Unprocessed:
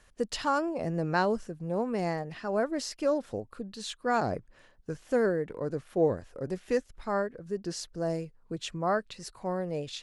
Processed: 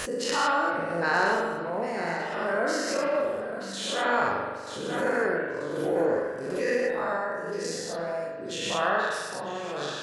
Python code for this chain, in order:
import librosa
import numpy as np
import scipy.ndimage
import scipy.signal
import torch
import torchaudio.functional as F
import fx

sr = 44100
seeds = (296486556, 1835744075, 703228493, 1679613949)

p1 = fx.spec_dilate(x, sr, span_ms=240)
p2 = fx.dynamic_eq(p1, sr, hz=1700.0, q=1.6, threshold_db=-39.0, ratio=4.0, max_db=6)
p3 = p2 + fx.echo_feedback(p2, sr, ms=935, feedback_pct=40, wet_db=-11.5, dry=0)
p4 = fx.dereverb_blind(p3, sr, rt60_s=0.88)
p5 = fx.highpass(p4, sr, hz=270.0, slope=6)
p6 = fx.high_shelf(p5, sr, hz=7500.0, db=4.5)
p7 = fx.rev_spring(p6, sr, rt60_s=1.3, pass_ms=(41,), chirp_ms=65, drr_db=-0.5)
p8 = fx.pre_swell(p7, sr, db_per_s=35.0)
y = F.gain(torch.from_numpy(p8), -5.0).numpy()